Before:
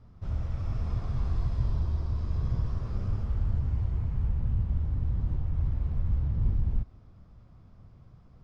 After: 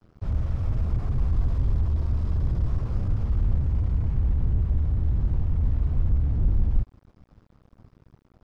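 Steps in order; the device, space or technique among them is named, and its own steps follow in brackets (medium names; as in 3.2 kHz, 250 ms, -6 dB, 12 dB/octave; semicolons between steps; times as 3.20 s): early transistor amplifier (crossover distortion -51.5 dBFS; slew-rate limiter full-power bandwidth 3.5 Hz); trim +6.5 dB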